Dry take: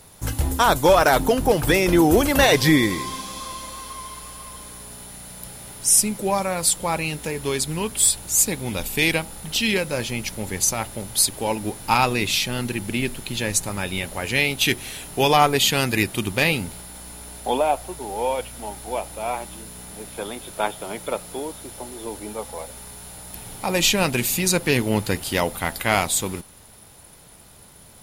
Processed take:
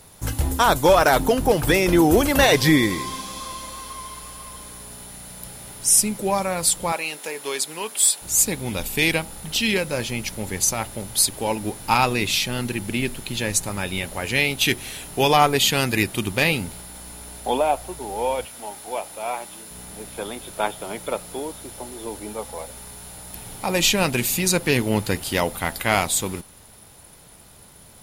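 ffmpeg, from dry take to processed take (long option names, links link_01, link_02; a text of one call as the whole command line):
ffmpeg -i in.wav -filter_complex "[0:a]asettb=1/sr,asplit=3[link_01][link_02][link_03];[link_01]atrim=end=6.924[link_04];[link_02]atrim=start=6.92:end=8.22,asetpts=PTS-STARTPTS,afade=type=in:duration=0.004:curve=qsin,afade=type=out:start_time=1.296:duration=0.004:curve=qsin,highpass=460[link_05];[link_03]atrim=start=8.216[link_06];[link_04][link_05]acrossfade=duration=0.004:curve1=hsin:curve2=qsin[link_07];[link_07][link_06]acrossfade=duration=0.004:curve1=qsin:curve2=hsin,asettb=1/sr,asplit=3[link_08][link_09][link_10];[link_08]atrim=end=18.454[link_11];[link_09]atrim=start=18.45:end=19.71,asetpts=PTS-STARTPTS,afade=type=in:duration=0.004:curve=qsin,afade=type=out:start_time=1.256:duration=0.004:curve=qsin,highpass=frequency=390:poles=1[link_12];[link_10]atrim=start=19.706[link_13];[link_11][link_12]acrossfade=duration=0.004:curve1=hsin:curve2=qsin[link_14];[link_14][link_13]acrossfade=duration=0.004:curve1=qsin:curve2=hsin" out.wav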